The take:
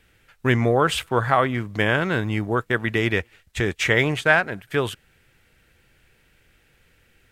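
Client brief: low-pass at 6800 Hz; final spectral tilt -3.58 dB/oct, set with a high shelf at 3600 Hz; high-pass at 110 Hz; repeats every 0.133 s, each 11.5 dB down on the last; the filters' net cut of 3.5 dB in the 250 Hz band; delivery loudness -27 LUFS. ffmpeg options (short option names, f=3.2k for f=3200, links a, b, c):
-af "highpass=110,lowpass=6.8k,equalizer=f=250:t=o:g=-4.5,highshelf=f=3.6k:g=-4.5,aecho=1:1:133|266|399:0.266|0.0718|0.0194,volume=-4dB"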